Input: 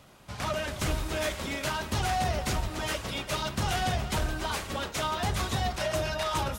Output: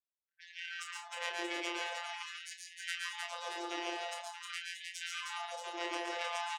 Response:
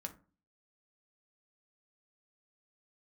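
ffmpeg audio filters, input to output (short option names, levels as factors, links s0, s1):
-filter_complex "[0:a]afwtdn=0.0224,asplit=2[s0][s1];[s1]asetrate=35002,aresample=44100,atempo=1.25992,volume=0.447[s2];[s0][s2]amix=inputs=2:normalize=0,afftfilt=real='re*gte(hypot(re,im),0.00355)':imag='im*gte(hypot(re,im),0.00355)':win_size=1024:overlap=0.75,equalizer=f=970:w=0.43:g=-14,alimiter=level_in=1.58:limit=0.0631:level=0:latency=1:release=266,volume=0.631,asoftclip=type=tanh:threshold=0.0237,afftfilt=real='hypot(re,im)*cos(PI*b)':imag='0':win_size=1024:overlap=0.75,aemphasis=mode=production:type=50kf,aeval=exprs='0.0562*(cos(1*acos(clip(val(0)/0.0562,-1,1)))-cos(1*PI/2))+0.0224*(cos(2*acos(clip(val(0)/0.0562,-1,1)))-cos(2*PI/2))+0.001*(cos(7*acos(clip(val(0)/0.0562,-1,1)))-cos(7*PI/2))':c=same,asplit=2[s3][s4];[s4]adelay=28,volume=0.447[s5];[s3][s5]amix=inputs=2:normalize=0,aecho=1:1:117|139|168|195|310|629:0.531|0.668|0.188|0.106|0.668|0.422,afftfilt=real='re*gte(b*sr/1024,300*pow(1600/300,0.5+0.5*sin(2*PI*0.46*pts/sr)))':imag='im*gte(b*sr/1024,300*pow(1600/300,0.5+0.5*sin(2*PI*0.46*pts/sr)))':win_size=1024:overlap=0.75,volume=2.11"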